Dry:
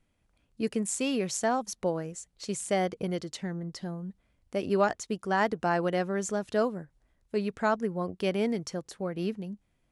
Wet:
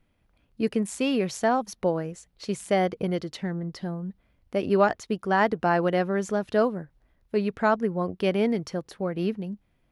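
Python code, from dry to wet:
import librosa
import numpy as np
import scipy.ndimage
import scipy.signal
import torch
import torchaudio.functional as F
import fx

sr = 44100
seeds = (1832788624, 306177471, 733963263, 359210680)

y = fx.peak_eq(x, sr, hz=7700.0, db=-11.5, octaves=1.0)
y = y * librosa.db_to_amplitude(4.5)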